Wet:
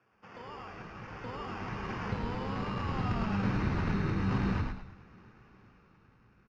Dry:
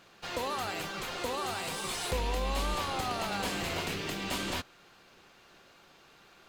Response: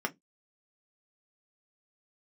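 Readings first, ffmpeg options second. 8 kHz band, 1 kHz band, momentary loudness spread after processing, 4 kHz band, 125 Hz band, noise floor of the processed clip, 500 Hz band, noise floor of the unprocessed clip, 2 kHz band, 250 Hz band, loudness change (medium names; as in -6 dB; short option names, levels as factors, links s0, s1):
under -20 dB, -3.5 dB, 15 LU, -13.5 dB, +8.5 dB, -65 dBFS, -4.5 dB, -59 dBFS, -4.0 dB, +6.0 dB, -0.5 dB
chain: -filter_complex "[0:a]bandreject=f=50:t=h:w=6,bandreject=f=100:t=h:w=6,bandreject=f=150:t=h:w=6,bandreject=f=200:t=h:w=6,bandreject=f=250:t=h:w=6,asubboost=boost=8.5:cutoff=210,dynaudnorm=f=320:g=9:m=3.76,acrusher=samples=11:mix=1:aa=0.000001,flanger=delay=2.8:depth=5.8:regen=-73:speed=0.55:shape=sinusoidal,asoftclip=type=tanh:threshold=0.178,highpass=f=100:w=0.5412,highpass=f=100:w=1.3066,equalizer=f=110:t=q:w=4:g=10,equalizer=f=190:t=q:w=4:g=3,equalizer=f=310:t=q:w=4:g=-4,equalizer=f=670:t=q:w=4:g=-7,equalizer=f=3400:t=q:w=4:g=-6,lowpass=f=4300:w=0.5412,lowpass=f=4300:w=1.3066,asplit=6[s0][s1][s2][s3][s4][s5];[s1]adelay=107,afreqshift=-60,volume=0.631[s6];[s2]adelay=214,afreqshift=-120,volume=0.226[s7];[s3]adelay=321,afreqshift=-180,volume=0.0822[s8];[s4]adelay=428,afreqshift=-240,volume=0.0295[s9];[s5]adelay=535,afreqshift=-300,volume=0.0106[s10];[s0][s6][s7][s8][s9][s10]amix=inputs=6:normalize=0,asplit=2[s11][s12];[1:a]atrim=start_sample=2205,lowpass=f=4600:w=0.5412,lowpass=f=4600:w=1.3066[s13];[s12][s13]afir=irnorm=-1:irlink=0,volume=0.15[s14];[s11][s14]amix=inputs=2:normalize=0,volume=0.398"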